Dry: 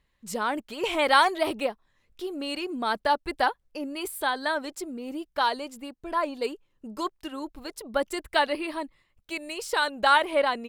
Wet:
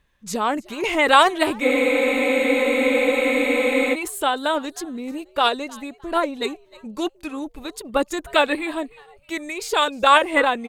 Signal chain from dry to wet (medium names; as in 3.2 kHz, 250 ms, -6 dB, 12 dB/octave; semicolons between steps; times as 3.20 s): frequency-shifting echo 308 ms, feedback 33%, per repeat +130 Hz, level -23 dB; formant shift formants -2 st; spectral freeze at 1.64 s, 2.30 s; trim +6 dB